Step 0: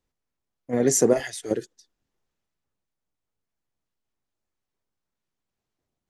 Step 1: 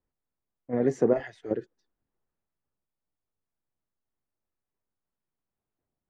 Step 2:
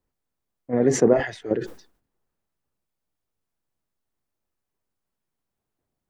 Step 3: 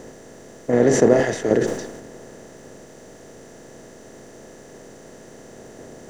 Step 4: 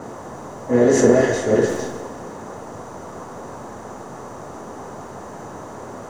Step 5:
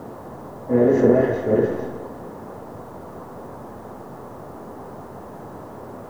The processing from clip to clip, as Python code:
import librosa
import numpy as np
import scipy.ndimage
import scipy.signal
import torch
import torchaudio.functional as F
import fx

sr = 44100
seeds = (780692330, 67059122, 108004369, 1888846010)

y1 = scipy.signal.sosfilt(scipy.signal.butter(2, 1700.0, 'lowpass', fs=sr, output='sos'), x)
y1 = y1 * librosa.db_to_amplitude(-3.5)
y2 = fx.sustainer(y1, sr, db_per_s=120.0)
y2 = y2 * librosa.db_to_amplitude(5.0)
y3 = fx.bin_compress(y2, sr, power=0.4)
y4 = fx.rev_double_slope(y3, sr, seeds[0], early_s=0.32, late_s=2.1, knee_db=-18, drr_db=-9.0)
y4 = fx.dmg_noise_band(y4, sr, seeds[1], low_hz=81.0, high_hz=1100.0, level_db=-28.0)
y4 = y4 * librosa.db_to_amplitude(-8.0)
y5 = fx.spacing_loss(y4, sr, db_at_10k=40)
y5 = fx.quant_dither(y5, sr, seeds[2], bits=10, dither='triangular')